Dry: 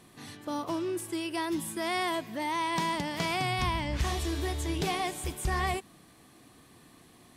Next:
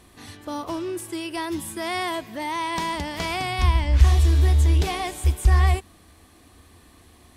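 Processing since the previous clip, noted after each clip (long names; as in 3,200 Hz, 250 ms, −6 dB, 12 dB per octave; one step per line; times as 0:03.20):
low shelf with overshoot 100 Hz +8.5 dB, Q 3
level +3.5 dB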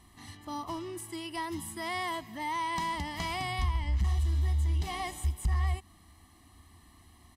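gain into a clipping stage and back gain 12 dB
comb filter 1 ms, depth 72%
downward compressor 2.5 to 1, threshold −20 dBFS, peak gain reduction 7.5 dB
level −8.5 dB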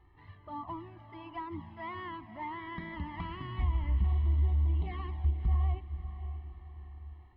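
flanger swept by the level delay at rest 2.4 ms, full sweep at −26 dBFS
Gaussian smoothing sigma 3.6 samples
feedback delay with all-pass diffusion 577 ms, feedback 45%, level −11.5 dB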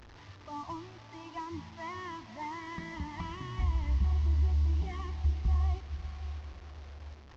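linear delta modulator 32 kbit/s, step −46.5 dBFS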